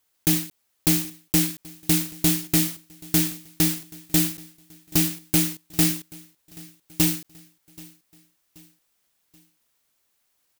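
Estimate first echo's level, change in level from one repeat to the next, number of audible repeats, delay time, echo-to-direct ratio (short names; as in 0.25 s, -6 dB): -23.0 dB, -6.5 dB, 2, 0.78 s, -22.0 dB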